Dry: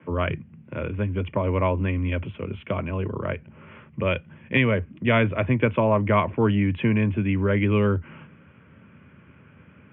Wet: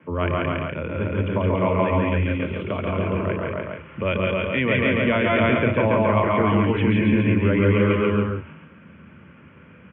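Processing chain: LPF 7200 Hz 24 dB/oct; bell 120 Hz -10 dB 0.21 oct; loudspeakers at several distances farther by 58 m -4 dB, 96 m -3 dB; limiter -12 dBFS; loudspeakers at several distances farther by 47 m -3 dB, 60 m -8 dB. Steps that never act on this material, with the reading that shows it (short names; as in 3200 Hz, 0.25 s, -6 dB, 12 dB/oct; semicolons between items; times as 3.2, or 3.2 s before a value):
LPF 7200 Hz: input band ends at 2700 Hz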